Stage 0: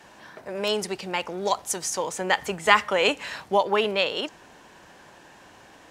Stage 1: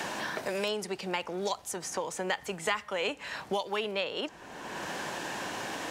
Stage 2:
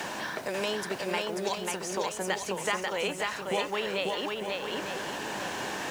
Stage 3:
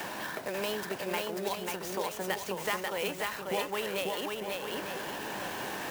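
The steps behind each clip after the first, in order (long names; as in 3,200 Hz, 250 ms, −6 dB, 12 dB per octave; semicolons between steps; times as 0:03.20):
multiband upward and downward compressor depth 100%; level −8 dB
feedback echo with a long and a short gap by turns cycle 900 ms, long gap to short 1.5 to 1, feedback 30%, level −3 dB; bit-depth reduction 10 bits, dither triangular
converter with an unsteady clock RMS 0.028 ms; level −2.5 dB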